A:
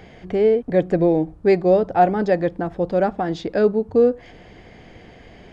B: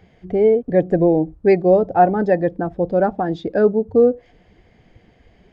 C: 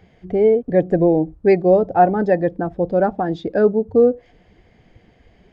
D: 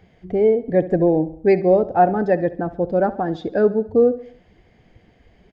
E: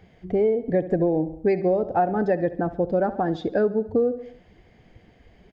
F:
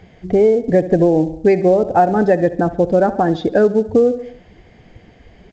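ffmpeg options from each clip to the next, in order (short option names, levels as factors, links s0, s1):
-af "afftdn=nr=13:nf=-30,volume=1.26"
-af anull
-af "aecho=1:1:69|138|207|276:0.141|0.0706|0.0353|0.0177,volume=0.841"
-af "acompressor=threshold=0.126:ratio=5"
-af "volume=2.66" -ar 16000 -c:a pcm_alaw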